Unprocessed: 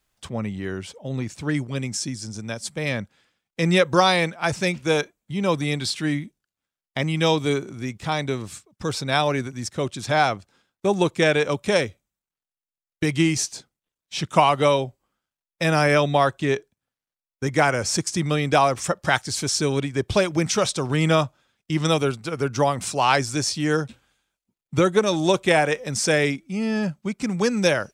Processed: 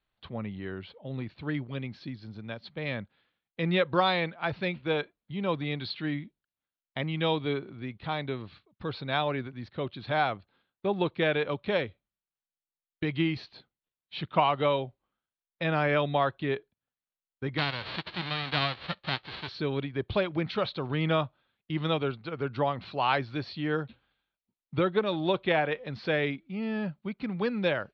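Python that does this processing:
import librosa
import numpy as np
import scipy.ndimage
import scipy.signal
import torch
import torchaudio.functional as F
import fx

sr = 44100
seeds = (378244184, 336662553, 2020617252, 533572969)

y = fx.envelope_flatten(x, sr, power=0.1, at=(17.57, 19.47), fade=0.02)
y = scipy.signal.sosfilt(scipy.signal.cheby1(6, 1.0, 4300.0, 'lowpass', fs=sr, output='sos'), y)
y = F.gain(torch.from_numpy(y), -7.0).numpy()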